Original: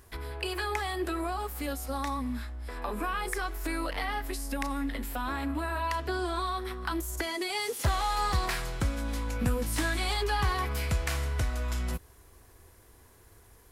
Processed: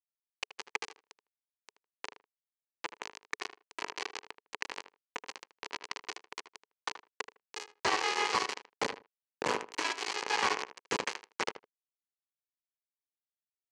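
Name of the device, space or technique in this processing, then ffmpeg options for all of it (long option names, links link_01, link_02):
hand-held game console: -filter_complex "[0:a]bandreject=frequency=60:width_type=h:width=6,bandreject=frequency=120:width_type=h:width=6,bandreject=frequency=180:width_type=h:width=6,bandreject=frequency=240:width_type=h:width=6,bandreject=frequency=300:width_type=h:width=6,bandreject=frequency=360:width_type=h:width=6,bandreject=frequency=420:width_type=h:width=6,bandreject=frequency=480:width_type=h:width=6,bandreject=frequency=540:width_type=h:width=6,acrusher=bits=3:mix=0:aa=0.000001,highpass=410,equalizer=frequency=430:width_type=q:width=4:gain=6,equalizer=frequency=650:width_type=q:width=4:gain=-7,equalizer=frequency=960:width_type=q:width=4:gain=5,equalizer=frequency=1400:width_type=q:width=4:gain=-4,equalizer=frequency=3600:width_type=q:width=4:gain=-8,equalizer=frequency=5300:width_type=q:width=4:gain=-4,lowpass=frequency=5500:width=0.5412,lowpass=frequency=5500:width=1.3066,highshelf=frequency=5200:gain=6,asplit=2[link_01][link_02];[link_02]adelay=78,lowpass=frequency=2100:poles=1,volume=-11dB,asplit=2[link_03][link_04];[link_04]adelay=78,lowpass=frequency=2100:poles=1,volume=0.16[link_05];[link_01][link_03][link_05]amix=inputs=3:normalize=0"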